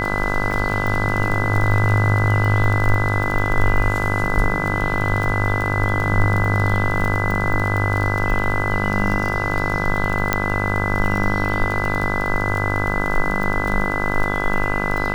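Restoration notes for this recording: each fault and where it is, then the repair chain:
buzz 50 Hz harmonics 32 -24 dBFS
crackle 31/s -22 dBFS
tone 2000 Hz -24 dBFS
0.51 gap 2.7 ms
10.33 pop -2 dBFS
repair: de-click; notch 2000 Hz, Q 30; de-hum 50 Hz, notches 32; interpolate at 0.51, 2.7 ms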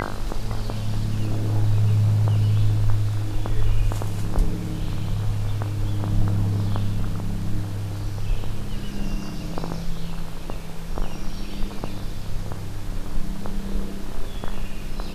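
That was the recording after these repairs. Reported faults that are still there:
none

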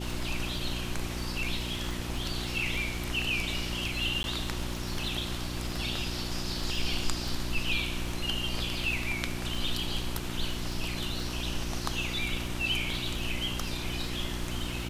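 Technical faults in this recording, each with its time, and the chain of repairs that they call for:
crackle 22/s -35 dBFS
hum 60 Hz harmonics 6 -37 dBFS
4.23–4.24 gap 11 ms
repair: de-click; de-hum 60 Hz, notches 6; interpolate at 4.23, 11 ms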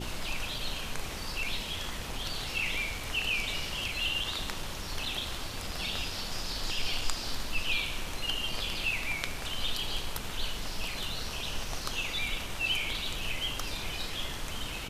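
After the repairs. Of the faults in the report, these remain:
none

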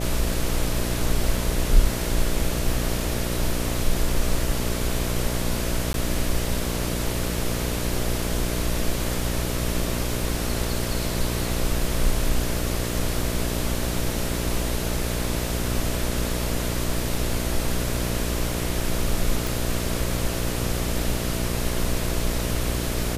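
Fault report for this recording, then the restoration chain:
buzz 60 Hz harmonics 11 -28 dBFS
5.93–5.94 gap 12 ms
19.47 pop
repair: de-click; de-hum 60 Hz, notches 11; interpolate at 5.93, 12 ms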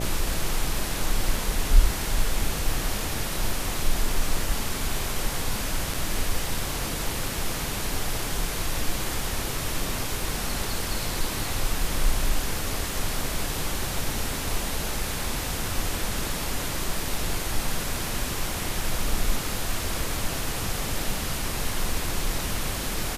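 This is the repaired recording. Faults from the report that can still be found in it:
none

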